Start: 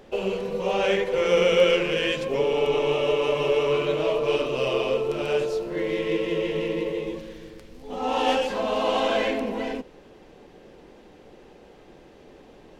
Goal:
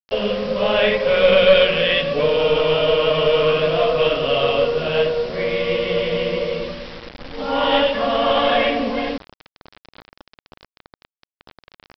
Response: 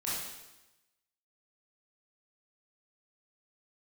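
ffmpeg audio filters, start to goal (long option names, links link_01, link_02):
-filter_complex "[0:a]asplit=2[link_01][link_02];[1:a]atrim=start_sample=2205,atrim=end_sample=3969[link_03];[link_02][link_03]afir=irnorm=-1:irlink=0,volume=-18.5dB[link_04];[link_01][link_04]amix=inputs=2:normalize=0,asetrate=47187,aresample=44100,aresample=8000,aresample=44100,aeval=exprs='0.944*(cos(1*acos(clip(val(0)/0.944,-1,1)))-cos(1*PI/2))+0.422*(cos(2*acos(clip(val(0)/0.944,-1,1)))-cos(2*PI/2))+0.0188*(cos(5*acos(clip(val(0)/0.944,-1,1)))-cos(5*PI/2))':channel_layout=same,equalizer=frequency=860:width_type=o:width=0.34:gain=-7,acontrast=40,equalizer=frequency=360:width_type=o:width=0.29:gain=-14,bandreject=frequency=47.34:width_type=h:width=4,bandreject=frequency=94.68:width_type=h:width=4,bandreject=frequency=142.02:width_type=h:width=4,bandreject=frequency=189.36:width_type=h:width=4,aresample=11025,acrusher=bits=5:mix=0:aa=0.000001,aresample=44100,volume=1.5dB"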